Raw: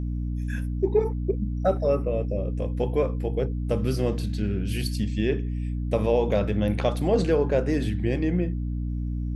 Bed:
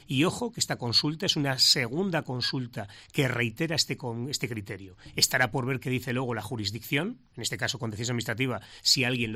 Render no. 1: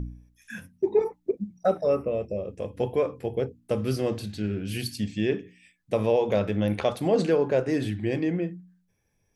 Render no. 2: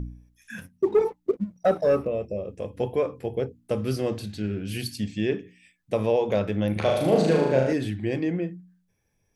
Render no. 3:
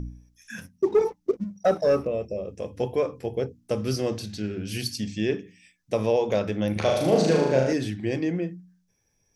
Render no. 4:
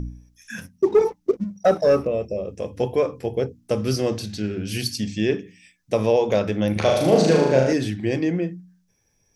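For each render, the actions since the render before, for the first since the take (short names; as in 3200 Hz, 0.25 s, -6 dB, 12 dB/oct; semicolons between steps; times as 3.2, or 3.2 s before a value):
de-hum 60 Hz, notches 5
0.58–2.07 sample leveller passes 1; 6.72–7.73 flutter echo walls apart 6.5 m, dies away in 0.94 s
bell 5700 Hz +9.5 dB 0.58 oct; notches 50/100/150/200 Hz
gain +4 dB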